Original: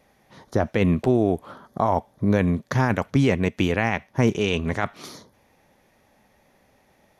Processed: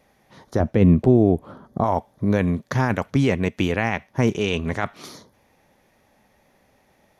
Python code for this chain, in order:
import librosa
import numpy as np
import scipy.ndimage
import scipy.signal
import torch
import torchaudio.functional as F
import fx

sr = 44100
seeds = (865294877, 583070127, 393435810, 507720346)

y = fx.tilt_shelf(x, sr, db=7.0, hz=660.0, at=(0.6, 1.84))